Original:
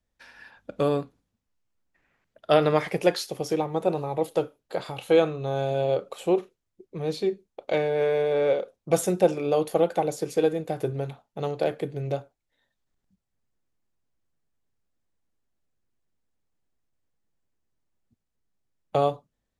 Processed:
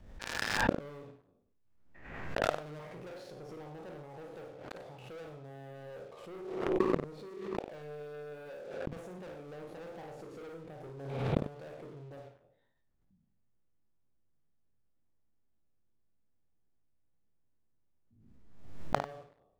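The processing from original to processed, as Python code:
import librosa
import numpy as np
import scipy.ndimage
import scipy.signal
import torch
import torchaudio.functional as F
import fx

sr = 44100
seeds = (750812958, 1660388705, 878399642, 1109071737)

p1 = fx.spec_trails(x, sr, decay_s=0.54)
p2 = fx.lowpass(p1, sr, hz=1500.0, slope=6)
p3 = fx.low_shelf(p2, sr, hz=270.0, db=5.0)
p4 = fx.leveller(p3, sr, passes=5)
p5 = fx.level_steps(p4, sr, step_db=21)
p6 = p4 + F.gain(torch.from_numpy(p5), -1.0).numpy()
p7 = fx.gate_flip(p6, sr, shuts_db=-14.0, range_db=-39)
p8 = p7 + fx.echo_multitap(p7, sr, ms=(54, 94), db=(-8.0, -13.0), dry=0)
y = fx.pre_swell(p8, sr, db_per_s=49.0)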